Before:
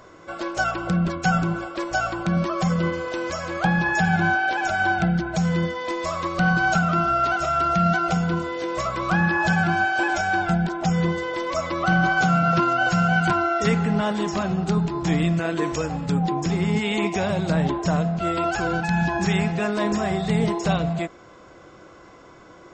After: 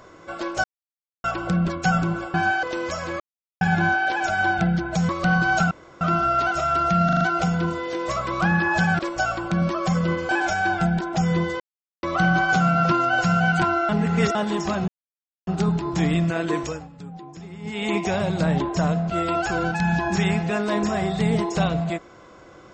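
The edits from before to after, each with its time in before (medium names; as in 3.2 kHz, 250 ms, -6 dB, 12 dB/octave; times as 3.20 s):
0.64 s: insert silence 0.60 s
1.74–3.04 s: swap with 9.68–9.97 s
3.61–4.02 s: mute
5.50–6.24 s: delete
6.86 s: insert room tone 0.30 s
7.90 s: stutter 0.04 s, 5 plays
11.28–11.71 s: mute
13.57–14.03 s: reverse
14.56 s: insert silence 0.59 s
15.65–17.02 s: dip -16 dB, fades 0.32 s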